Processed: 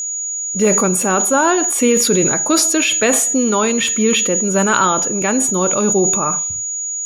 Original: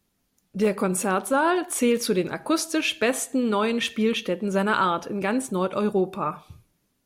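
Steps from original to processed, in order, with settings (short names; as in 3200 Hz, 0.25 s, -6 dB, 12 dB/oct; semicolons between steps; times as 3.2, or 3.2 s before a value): whine 6800 Hz -27 dBFS; sustainer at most 29 dB/s; gain +6.5 dB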